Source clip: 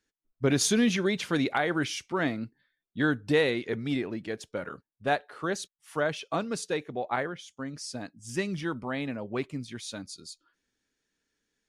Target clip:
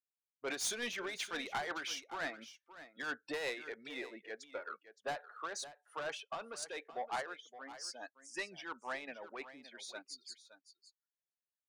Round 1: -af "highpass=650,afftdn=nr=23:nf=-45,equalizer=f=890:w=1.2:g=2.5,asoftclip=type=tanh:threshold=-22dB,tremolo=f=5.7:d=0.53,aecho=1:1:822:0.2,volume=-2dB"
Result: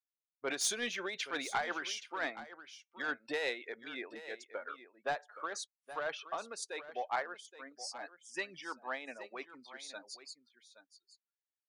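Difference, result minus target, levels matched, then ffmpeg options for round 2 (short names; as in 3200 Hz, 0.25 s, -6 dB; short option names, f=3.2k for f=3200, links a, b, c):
echo 0.255 s late; soft clip: distortion -7 dB
-af "highpass=650,afftdn=nr=23:nf=-45,equalizer=f=890:w=1.2:g=2.5,asoftclip=type=tanh:threshold=-29.5dB,tremolo=f=5.7:d=0.53,aecho=1:1:567:0.2,volume=-2dB"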